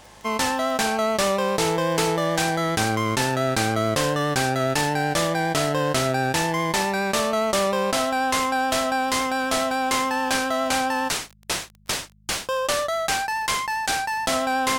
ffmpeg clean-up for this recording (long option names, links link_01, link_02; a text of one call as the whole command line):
ffmpeg -i in.wav -af "adeclick=threshold=4,bandreject=frequency=51.7:width_type=h:width=4,bandreject=frequency=103.4:width_type=h:width=4,bandreject=frequency=155.1:width_type=h:width=4,bandreject=frequency=206.8:width_type=h:width=4" out.wav